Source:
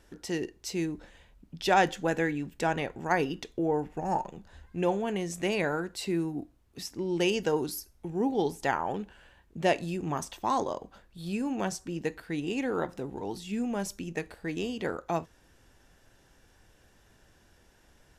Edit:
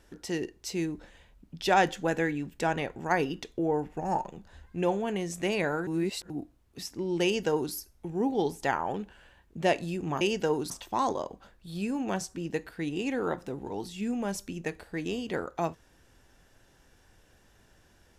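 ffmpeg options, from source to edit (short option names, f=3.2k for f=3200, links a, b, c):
-filter_complex "[0:a]asplit=5[a][b][c][d][e];[a]atrim=end=5.872[f];[b]atrim=start=5.868:end=6.302,asetpts=PTS-STARTPTS,areverse[g];[c]atrim=start=6.298:end=10.212[h];[d]atrim=start=7.238:end=7.732[i];[e]atrim=start=10.208[j];[f][g]acrossfade=d=0.004:c1=hsin:c2=hsin[k];[k][h]acrossfade=d=0.004:c1=hsin:c2=hsin[l];[l][i]acrossfade=d=0.004:c1=hsin:c2=hsin[m];[m][j]acrossfade=d=0.004:c1=hsin:c2=hsin"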